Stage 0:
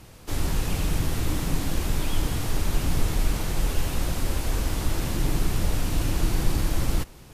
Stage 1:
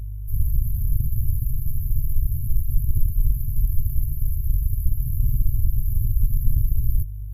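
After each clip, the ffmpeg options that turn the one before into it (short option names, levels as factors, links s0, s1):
-af "aeval=exprs='val(0)+0.0224*(sin(2*PI*50*n/s)+sin(2*PI*2*50*n/s)/2+sin(2*PI*3*50*n/s)/3+sin(2*PI*4*50*n/s)/4+sin(2*PI*5*50*n/s)/5)':c=same,afftfilt=real='re*(1-between(b*sr/4096,140,11000))':imag='im*(1-between(b*sr/4096,140,11000))':win_size=4096:overlap=0.75,aeval=exprs='0.335*(cos(1*acos(clip(val(0)/0.335,-1,1)))-cos(1*PI/2))+0.0211*(cos(6*acos(clip(val(0)/0.335,-1,1)))-cos(6*PI/2))':c=same,volume=1.58"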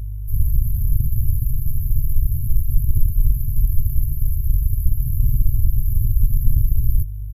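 -af "aresample=32000,aresample=44100,volume=1.5"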